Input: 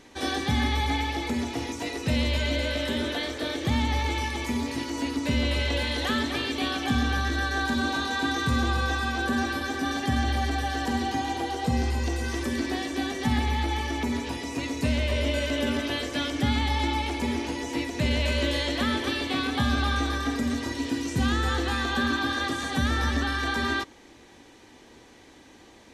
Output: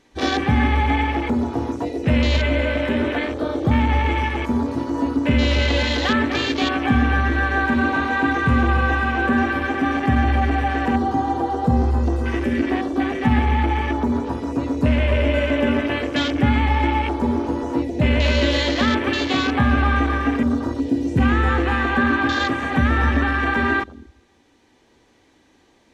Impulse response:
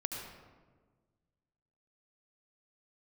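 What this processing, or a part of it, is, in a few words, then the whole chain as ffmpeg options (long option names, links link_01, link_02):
ducked reverb: -filter_complex "[0:a]highshelf=frequency=7200:gain=-3.5,asplit=3[link_01][link_02][link_03];[1:a]atrim=start_sample=2205[link_04];[link_02][link_04]afir=irnorm=-1:irlink=0[link_05];[link_03]apad=whole_len=1143907[link_06];[link_05][link_06]sidechaincompress=threshold=-35dB:ratio=5:attack=27:release=1400,volume=-4.5dB[link_07];[link_01][link_07]amix=inputs=2:normalize=0,afwtdn=0.0251,volume=7dB"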